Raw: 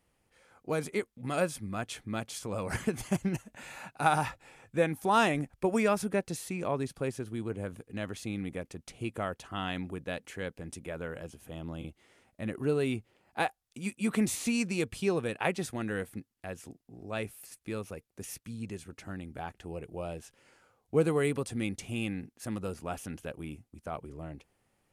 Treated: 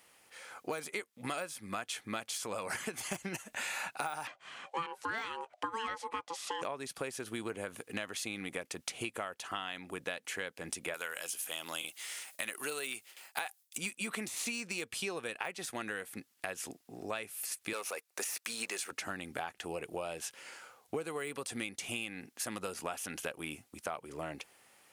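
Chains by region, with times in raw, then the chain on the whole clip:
0:04.27–0:06.62: ring modulation 670 Hz + high-frequency loss of the air 78 metres
0:10.94–0:13.78: noise gate with hold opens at −55 dBFS, closes at −62 dBFS + spectral tilt +4.5 dB per octave
0:17.73–0:18.91: high-pass filter 520 Hz + parametric band 3,200 Hz −4 dB 0.26 octaves + leveller curve on the samples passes 2
whole clip: de-essing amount 85%; high-pass filter 1,300 Hz 6 dB per octave; downward compressor 16 to 1, threshold −50 dBFS; level +15.5 dB

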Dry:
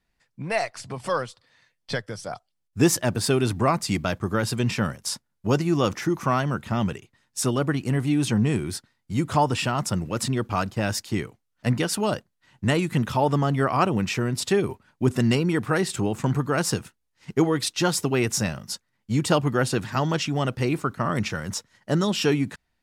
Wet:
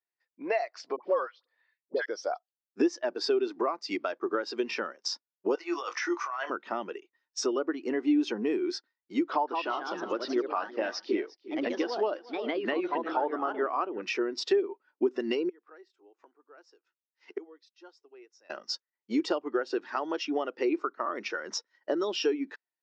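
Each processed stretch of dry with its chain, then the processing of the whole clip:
0:00.96–0:02.06: high-frequency loss of the air 180 metres + all-pass dispersion highs, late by 74 ms, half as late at 870 Hz
0:05.55–0:06.50: high-pass filter 850 Hz + compressor whose output falls as the input rises −34 dBFS + double-tracking delay 23 ms −9 dB
0:09.30–0:14.02: low-pass filter 5,300 Hz 24 dB per octave + delay with pitch and tempo change per echo 174 ms, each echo +2 semitones, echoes 2, each echo −6 dB + single-tap delay 352 ms −16.5 dB
0:15.49–0:18.50: high-pass filter 330 Hz + gate with flip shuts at −26 dBFS, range −26 dB
whole clip: elliptic band-pass filter 330–5,700 Hz, stop band 50 dB; downward compressor 6 to 1, threshold −33 dBFS; every bin expanded away from the loudest bin 1.5 to 1; level +5.5 dB

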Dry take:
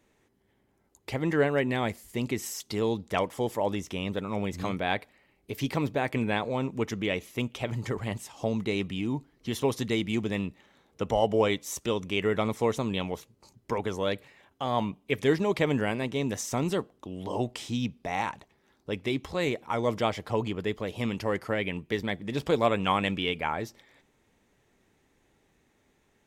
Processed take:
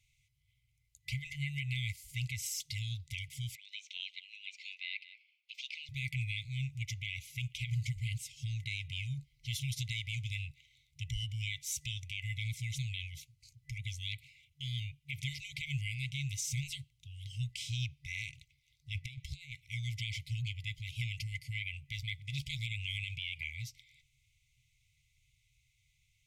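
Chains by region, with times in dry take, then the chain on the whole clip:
0:03.55–0:05.89: high-frequency loss of the air 160 metres + frequency shifter +360 Hz + single-tap delay 187 ms −19 dB
0:18.95–0:19.66: low-shelf EQ 400 Hz +3 dB + transient designer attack −2 dB, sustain −10 dB + compressor whose output falls as the input rises −34 dBFS, ratio −0.5
whole clip: brick-wall band-stop 140–2,000 Hz; high-shelf EQ 11,000 Hz −5.5 dB; brickwall limiter −27 dBFS

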